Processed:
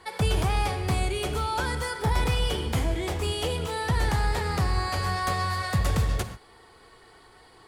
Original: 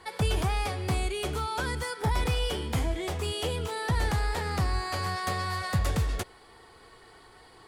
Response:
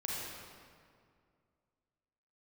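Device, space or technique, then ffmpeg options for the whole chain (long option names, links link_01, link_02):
keyed gated reverb: -filter_complex "[0:a]asplit=3[link_01][link_02][link_03];[1:a]atrim=start_sample=2205[link_04];[link_02][link_04]afir=irnorm=-1:irlink=0[link_05];[link_03]apad=whole_len=338380[link_06];[link_05][link_06]sidechaingate=range=-33dB:threshold=-45dB:ratio=16:detection=peak,volume=-9dB[link_07];[link_01][link_07]amix=inputs=2:normalize=0"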